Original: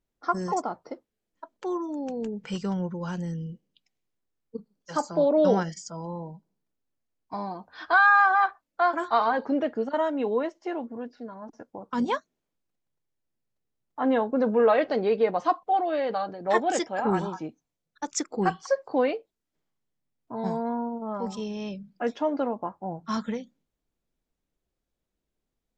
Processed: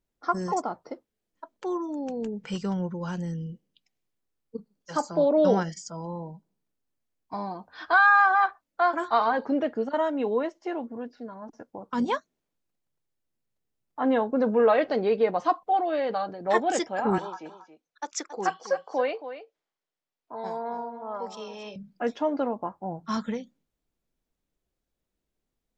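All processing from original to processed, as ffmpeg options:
-filter_complex "[0:a]asettb=1/sr,asplit=3[a][b][c];[a]atrim=end=17.184[d];[b]atrim=start=17.18:end=21.76,asetpts=PTS-STARTPTS,afade=t=in:d=0.004:c=qsin,afade=t=out:st=4.576:d=0.004:c=qsin,acrossover=split=390 7200:gain=0.141 1 0.126[e][f][g];[e][f][g]amix=inputs=3:normalize=0,aecho=1:1:275:0.251,atrim=end_sample=201978[h];[c]atrim=start=21.756[i];[d][h]acrossfade=d=0.004:c1=hsin:c2=qsin[j];[j][i]acrossfade=d=0.004:c1=qsin:c2=hsin"

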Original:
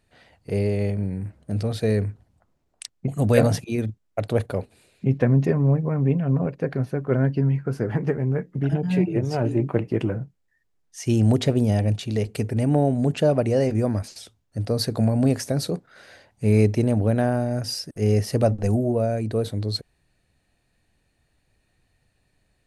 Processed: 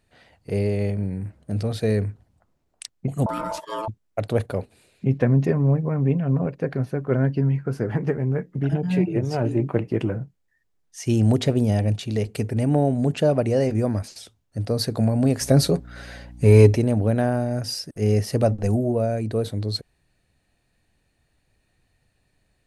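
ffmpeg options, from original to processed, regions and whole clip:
-filter_complex "[0:a]asettb=1/sr,asplit=3[a][b][c];[a]atrim=end=3.264[d];[b]atrim=start=3.26:end=3.88,asetpts=PTS-STARTPTS,afade=t=in:d=0.004:c=qsin,afade=t=out:st=0.616:d=0.004:c=qsin,aecho=1:1:6.7:0.6,atrim=end_sample=27342,acompressor=threshold=-21dB:ratio=12:attack=3.2:release=140:knee=1:detection=peak,aeval=exprs='val(0)*sin(2*PI*770*n/s)':c=same[e];[c]atrim=start=3.876[f];[d][e]acrossfade=d=0.004:c1=hsin:c2=qsin[g];[g][f]acrossfade=d=0.004:c1=qsin:c2=hsin,asettb=1/sr,asplit=3[h][i][j];[h]atrim=end=15.414[k];[i]atrim=start=15.41:end=16.77,asetpts=PTS-STARTPTS,afade=t=in:d=0.004:c=qsin,afade=t=out:st=1.356:d=0.004:c=qsin,acontrast=34,aecho=1:1:7.3:0.49,atrim=end_sample=59976,aeval=exprs='val(0)+0.01*(sin(2*PI*60*n/s)+sin(2*PI*2*60*n/s)/2+sin(2*PI*3*60*n/s)/3+sin(2*PI*4*60*n/s)/4+sin(2*PI*5*60*n/s)/5)':c=same[l];[j]atrim=start=16.766[m];[k][l]acrossfade=d=0.004:c1=hsin:c2=qsin[n];[n][m]acrossfade=d=0.004:c1=qsin:c2=hsin"

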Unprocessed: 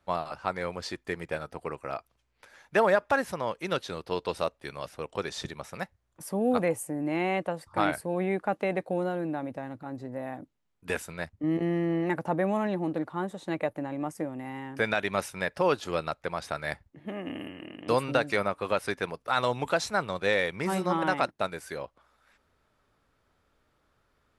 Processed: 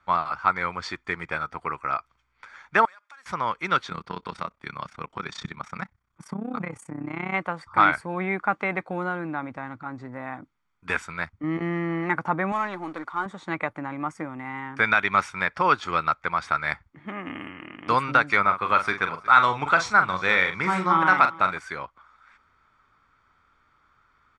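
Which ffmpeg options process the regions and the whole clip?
-filter_complex "[0:a]asettb=1/sr,asplit=3[a][b][c];[a]atrim=end=2.854[d];[b]atrim=start=2.85:end=3.26,asetpts=PTS-STARTPTS,afade=t=in:d=0.004:c=qsin,afade=t=out:st=0.406:d=0.004:c=qsin,aeval=exprs='if(lt(val(0),0),0.708*val(0),val(0))':c=same,aderivative,acompressor=threshold=-52dB:ratio=10:attack=3.2:release=140:knee=1:detection=peak[e];[c]atrim=start=3.256[f];[d][e]acrossfade=d=0.004:c1=hsin:c2=qsin[g];[g][f]acrossfade=d=0.004:c1=qsin:c2=hsin,asettb=1/sr,asplit=3[h][i][j];[h]atrim=end=3.894[k];[i]atrim=start=3.89:end=7.34,asetpts=PTS-STARTPTS,afade=t=in:d=0.004:c=qsin,afade=t=out:st=3.446:d=0.004:c=qsin,equalizer=f=190:t=o:w=0.87:g=9,acompressor=threshold=-26dB:ratio=4:attack=3.2:release=140:knee=1:detection=peak,tremolo=f=32:d=0.857[l];[j]atrim=start=7.336[m];[k][l]acrossfade=d=0.004:c1=hsin:c2=qsin[n];[n][m]acrossfade=d=0.004:c1=qsin:c2=hsin,asettb=1/sr,asplit=3[o][p][q];[o]atrim=end=12.524[r];[p]atrim=start=12.52:end=13.26,asetpts=PTS-STARTPTS,afade=t=in:d=0.004:c=qsin,afade=t=out:st=0.736:d=0.004:c=qsin,aeval=exprs='if(lt(val(0),0),0.708*val(0),val(0))':c=same,bass=f=250:g=-11,treble=f=4k:g=8[s];[q]atrim=start=13.256[t];[r][s]acrossfade=d=0.004:c1=hsin:c2=qsin[u];[u][t]acrossfade=d=0.004:c1=qsin:c2=hsin,asettb=1/sr,asplit=3[v][w][x];[v]atrim=end=18.414[y];[w]atrim=start=18.41:end=21.58,asetpts=PTS-STARTPTS,afade=t=in:d=0.004:c=qsin,afade=t=out:st=3.166:d=0.004:c=qsin,asplit=2[z][aa];[aa]adelay=43,volume=-8.5dB[ab];[z][ab]amix=inputs=2:normalize=0,atrim=end_sample=139797,aecho=1:1:364|728:0.0944|0.0255,atrim=end_sample=139797[ac];[x]atrim=start=21.576[ad];[y][ac]acrossfade=d=0.004:c1=hsin:c2=qsin[ae];[ae][ad]acrossfade=d=0.004:c1=qsin:c2=hsin,lowpass=f=7.8k:w=0.5412,lowpass=f=7.8k:w=1.3066,equalizer=f=1.5k:w=1:g=14,aecho=1:1:0.9:0.46,volume=-1.5dB"

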